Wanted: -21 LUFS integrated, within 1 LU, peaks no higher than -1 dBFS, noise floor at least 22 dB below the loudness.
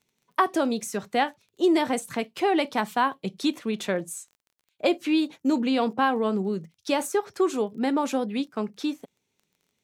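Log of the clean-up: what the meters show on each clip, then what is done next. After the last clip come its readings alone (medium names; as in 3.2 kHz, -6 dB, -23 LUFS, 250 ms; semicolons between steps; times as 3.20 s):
tick rate 21 per s; loudness -26.5 LUFS; peak level -9.5 dBFS; loudness target -21.0 LUFS
-> de-click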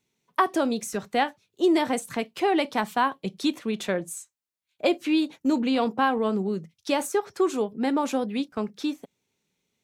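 tick rate 0 per s; loudness -26.5 LUFS; peak level -9.5 dBFS; loudness target -21.0 LUFS
-> trim +5.5 dB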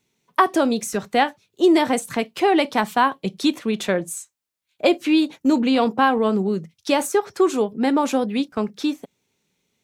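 loudness -21.0 LUFS; peak level -4.0 dBFS; noise floor -74 dBFS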